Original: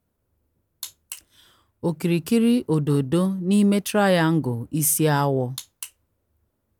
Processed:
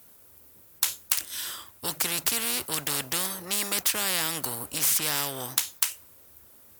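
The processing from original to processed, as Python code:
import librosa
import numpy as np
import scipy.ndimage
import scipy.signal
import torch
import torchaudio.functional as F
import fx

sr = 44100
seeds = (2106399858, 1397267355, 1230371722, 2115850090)

y = fx.tilt_eq(x, sr, slope=3.5)
y = fx.spectral_comp(y, sr, ratio=4.0)
y = y * librosa.db_to_amplitude(-3.5)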